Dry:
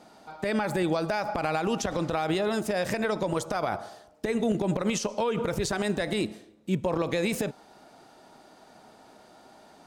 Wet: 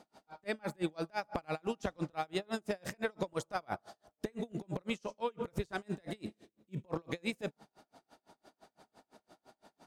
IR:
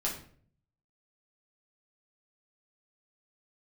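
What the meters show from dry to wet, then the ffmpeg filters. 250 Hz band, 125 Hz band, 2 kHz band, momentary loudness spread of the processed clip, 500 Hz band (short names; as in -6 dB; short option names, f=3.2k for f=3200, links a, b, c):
-11.0 dB, -10.0 dB, -9.5 dB, 7 LU, -11.0 dB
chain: -filter_complex "[0:a]asplit=2[a][b];[1:a]atrim=start_sample=2205,asetrate=38808,aresample=44100[c];[b][c]afir=irnorm=-1:irlink=0,volume=-27dB[d];[a][d]amix=inputs=2:normalize=0,aeval=exprs='val(0)*pow(10,-36*(0.5-0.5*cos(2*PI*5.9*n/s))/20)':c=same,volume=-4dB"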